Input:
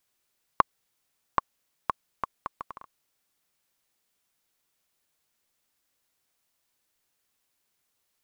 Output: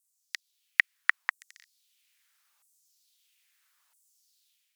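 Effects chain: LFO high-pass saw down 0.44 Hz 540–5200 Hz; speed mistake 45 rpm record played at 78 rpm; AGC gain up to 7 dB

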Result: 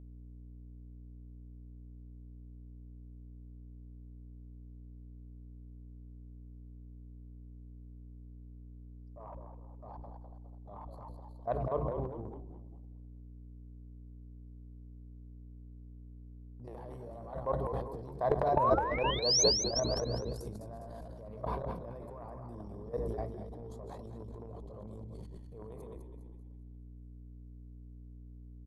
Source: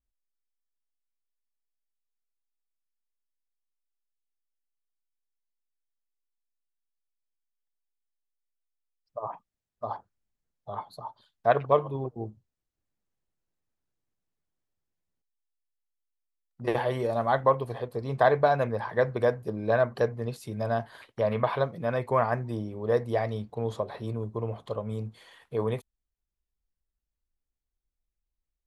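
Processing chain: regenerating reverse delay 0.104 s, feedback 59%, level -11 dB; dynamic EQ 4600 Hz, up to -5 dB, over -52 dBFS, Q 1.2; painted sound rise, 18.56–19.44, 840–6600 Hz -19 dBFS; band shelf 2200 Hz -12 dB; notch 850 Hz, Q 19; level quantiser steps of 22 dB; frequency-shifting echo 0.203 s, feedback 42%, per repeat -58 Hz, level -9 dB; hum 60 Hz, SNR 10 dB; transient shaper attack -7 dB, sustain +12 dB; gain -4 dB

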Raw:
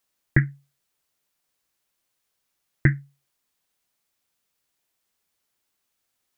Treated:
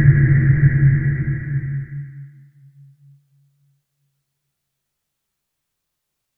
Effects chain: tone controls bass +10 dB, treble -1 dB; Paulstretch 10×, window 0.50 s, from 0.39

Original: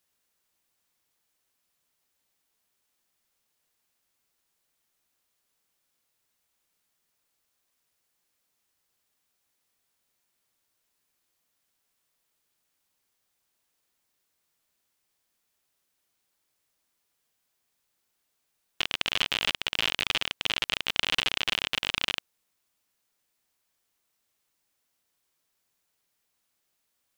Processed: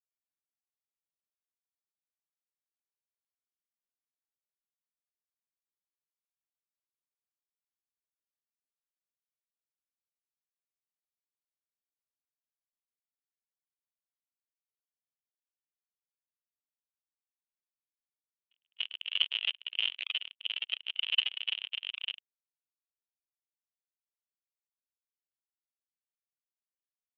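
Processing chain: HPF 340 Hz 24 dB/oct; reverse echo 0.291 s -17.5 dB; reverb removal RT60 0.5 s; soft clip -10 dBFS, distortion -20 dB; spectral expander 2.5:1; gain -1 dB

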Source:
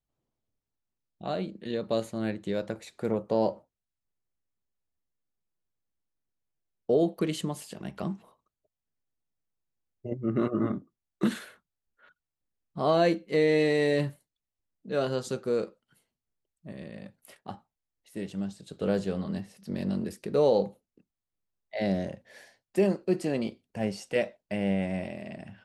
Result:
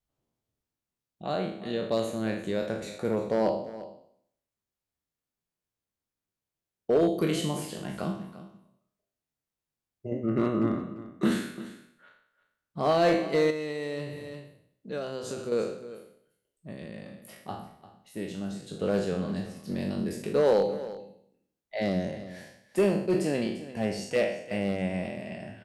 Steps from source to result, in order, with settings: spectral trails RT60 0.65 s; one-sided clip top -17.5 dBFS; echo 0.346 s -15.5 dB; 13.5–15.52 compressor 4:1, threshold -32 dBFS, peak gain reduction 9.5 dB; de-hum 64.65 Hz, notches 5

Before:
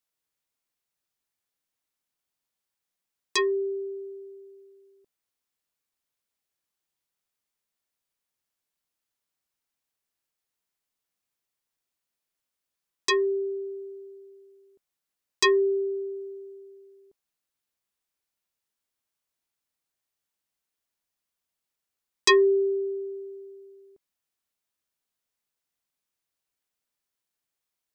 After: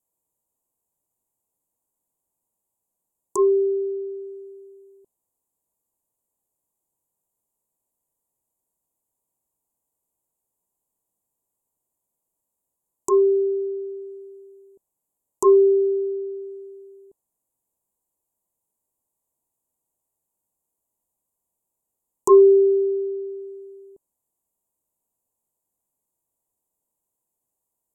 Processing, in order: treble ducked by the level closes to 1500 Hz, closed at -28 dBFS; Chebyshev band-stop 1000–7100 Hz, order 4; gain +8 dB

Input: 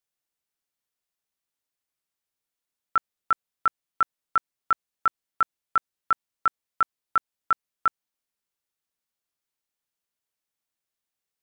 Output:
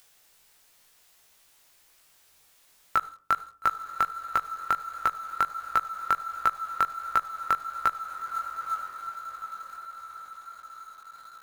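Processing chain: bell 220 Hz -7 dB 1.7 oct; diffused feedback echo 0.9 s, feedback 55%, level -15 dB; on a send at -15 dB: reverb RT60 0.40 s, pre-delay 46 ms; on the sum: compressor 4:1, threshold -32 dBFS, peak gain reduction 12.5 dB; in parallel at -7.5 dB: companded quantiser 4-bit; on the sum: upward compressor, threshold -47 dBFS; chorus 1.4 Hz, delay 17 ms, depth 4.1 ms; gain +8 dB

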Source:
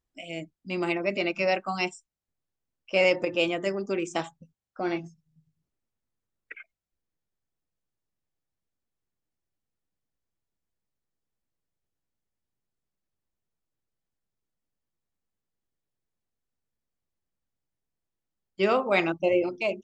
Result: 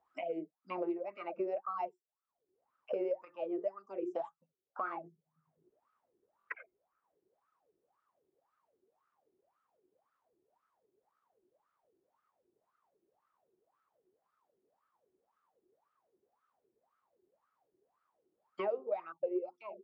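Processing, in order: wah 1.9 Hz 360–1300 Hz, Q 16; stuck buffer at 6.38, samples 1024, times 3; three-band squash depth 100%; gain +2 dB

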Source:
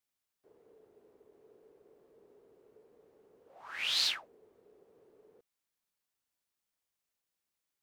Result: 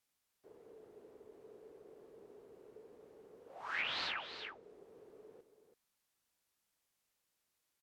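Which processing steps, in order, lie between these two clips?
echo 0.332 s -10 dB; treble ducked by the level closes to 1600 Hz, closed at -35 dBFS; gain +4.5 dB

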